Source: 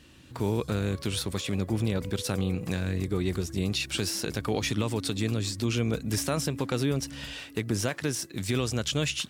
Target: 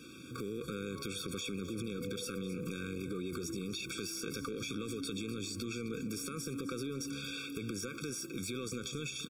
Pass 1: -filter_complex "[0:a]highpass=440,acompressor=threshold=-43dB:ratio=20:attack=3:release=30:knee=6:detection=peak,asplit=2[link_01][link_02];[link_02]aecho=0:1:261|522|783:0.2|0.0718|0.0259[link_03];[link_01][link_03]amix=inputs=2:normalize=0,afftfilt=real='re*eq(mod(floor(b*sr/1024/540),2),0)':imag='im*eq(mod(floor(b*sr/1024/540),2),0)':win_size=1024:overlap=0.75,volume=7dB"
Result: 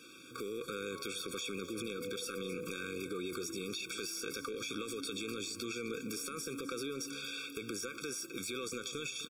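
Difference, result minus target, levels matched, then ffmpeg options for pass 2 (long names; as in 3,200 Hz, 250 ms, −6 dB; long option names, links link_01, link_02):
250 Hz band −3.5 dB
-filter_complex "[0:a]highpass=190,acompressor=threshold=-43dB:ratio=20:attack=3:release=30:knee=6:detection=peak,asplit=2[link_01][link_02];[link_02]aecho=0:1:261|522|783:0.2|0.0718|0.0259[link_03];[link_01][link_03]amix=inputs=2:normalize=0,afftfilt=real='re*eq(mod(floor(b*sr/1024/540),2),0)':imag='im*eq(mod(floor(b*sr/1024/540),2),0)':win_size=1024:overlap=0.75,volume=7dB"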